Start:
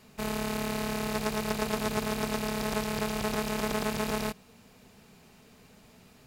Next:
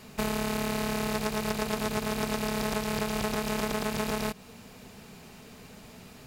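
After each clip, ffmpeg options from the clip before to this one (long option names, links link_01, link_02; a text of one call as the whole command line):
ffmpeg -i in.wav -af "acompressor=threshold=-33dB:ratio=6,volume=7.5dB" out.wav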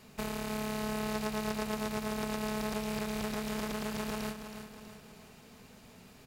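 ffmpeg -i in.wav -af "aecho=1:1:322|644|966|1288|1610:0.355|0.17|0.0817|0.0392|0.0188,volume=-7dB" out.wav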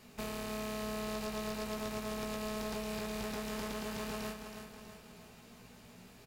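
ffmpeg -i in.wav -filter_complex "[0:a]asoftclip=type=tanh:threshold=-27dB,asplit=2[link_01][link_02];[link_02]adelay=17,volume=-5.5dB[link_03];[link_01][link_03]amix=inputs=2:normalize=0,volume=-2dB" out.wav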